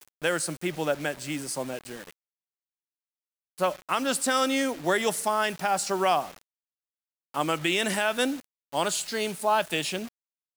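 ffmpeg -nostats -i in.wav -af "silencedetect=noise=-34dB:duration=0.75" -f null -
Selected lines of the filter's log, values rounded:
silence_start: 2.01
silence_end: 3.58 | silence_duration: 1.57
silence_start: 6.30
silence_end: 7.34 | silence_duration: 1.04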